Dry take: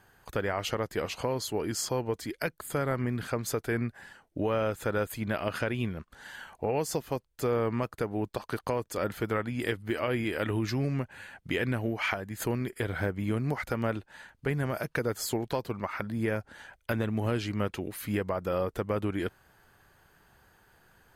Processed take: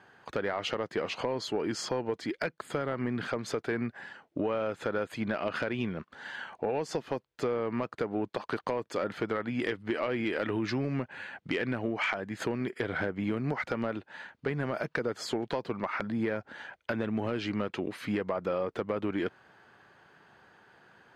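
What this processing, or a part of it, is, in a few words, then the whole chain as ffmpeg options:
AM radio: -af "highpass=170,lowpass=3900,acompressor=threshold=-30dB:ratio=6,asoftclip=type=tanh:threshold=-23dB,volume=4.5dB"

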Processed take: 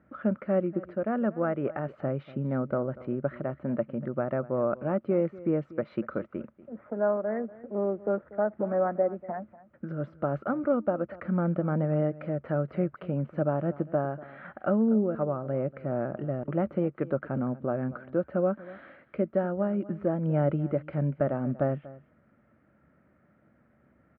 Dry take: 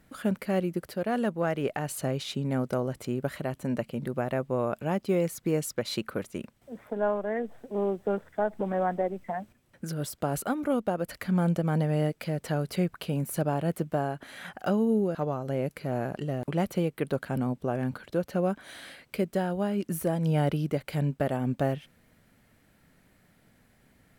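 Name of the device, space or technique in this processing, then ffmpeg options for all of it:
bass cabinet: -af "highpass=65,equalizer=frequency=70:width_type=q:width=4:gain=9,equalizer=frequency=140:width_type=q:width=4:gain=5,equalizer=frequency=220:width_type=q:width=4:gain=7,equalizer=frequency=330:width_type=q:width=4:gain=8,equalizer=frequency=580:width_type=q:width=4:gain=10,equalizer=frequency=1300:width_type=q:width=4:gain=10,lowpass=frequency=2100:width=0.5412,lowpass=frequency=2100:width=1.3066,aecho=1:1:240:0.119,volume=-6dB"

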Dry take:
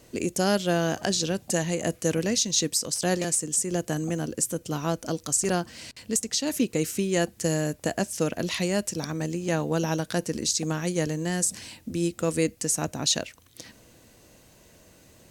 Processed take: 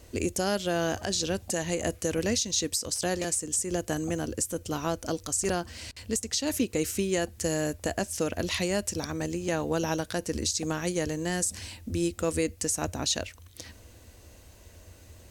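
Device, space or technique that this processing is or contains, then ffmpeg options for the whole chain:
car stereo with a boomy subwoofer: -af "lowshelf=frequency=110:width_type=q:width=3:gain=7.5,alimiter=limit=-16.5dB:level=0:latency=1:release=151"

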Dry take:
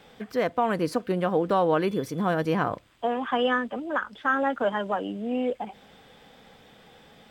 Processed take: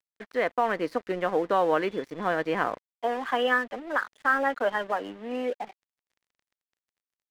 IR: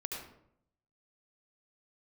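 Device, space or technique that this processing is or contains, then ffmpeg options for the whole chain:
pocket radio on a weak battery: -af "highpass=310,lowpass=4100,aeval=exprs='sgn(val(0))*max(abs(val(0))-0.00531,0)':channel_layout=same,equalizer=frequency=1900:width_type=o:width=0.44:gain=6"

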